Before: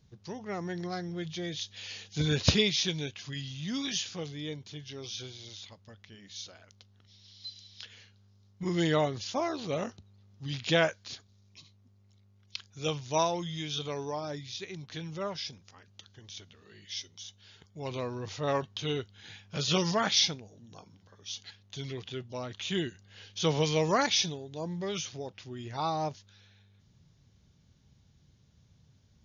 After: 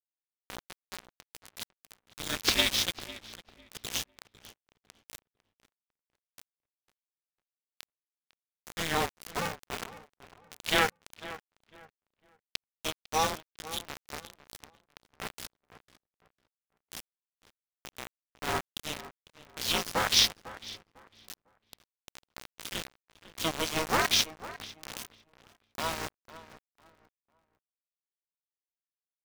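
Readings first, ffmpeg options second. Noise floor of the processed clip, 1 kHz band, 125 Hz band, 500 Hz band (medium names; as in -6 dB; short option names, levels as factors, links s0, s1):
under -85 dBFS, 0.0 dB, -11.0 dB, -7.0 dB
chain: -filter_complex "[0:a]highpass=f=1100:p=1,asplit=2[s0][s1];[s1]adynamicsmooth=sensitivity=2.5:basefreq=2600,volume=0.531[s2];[s0][s2]amix=inputs=2:normalize=0,aeval=exprs='val(0)+0.00891*(sin(2*PI*60*n/s)+sin(2*PI*2*60*n/s)/2+sin(2*PI*3*60*n/s)/3+sin(2*PI*4*60*n/s)/4+sin(2*PI*5*60*n/s)/5)':c=same,aeval=exprs='val(0)*gte(abs(val(0)),0.0355)':c=same,asplit=2[s3][s4];[s4]adelay=501,lowpass=f=2400:p=1,volume=0.178,asplit=2[s5][s6];[s6]adelay=501,lowpass=f=2400:p=1,volume=0.27,asplit=2[s7][s8];[s8]adelay=501,lowpass=f=2400:p=1,volume=0.27[s9];[s3][s5][s7][s9]amix=inputs=4:normalize=0,aeval=exprs='val(0)*sgn(sin(2*PI*160*n/s))':c=same,volume=1.19"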